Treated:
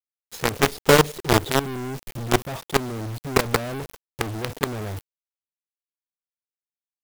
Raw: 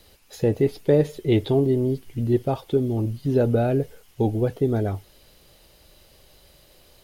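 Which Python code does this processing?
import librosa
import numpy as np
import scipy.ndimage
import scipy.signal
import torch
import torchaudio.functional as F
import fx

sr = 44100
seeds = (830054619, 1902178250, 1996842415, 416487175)

y = fx.quant_companded(x, sr, bits=2)
y = F.gain(torch.from_numpy(y), -5.0).numpy()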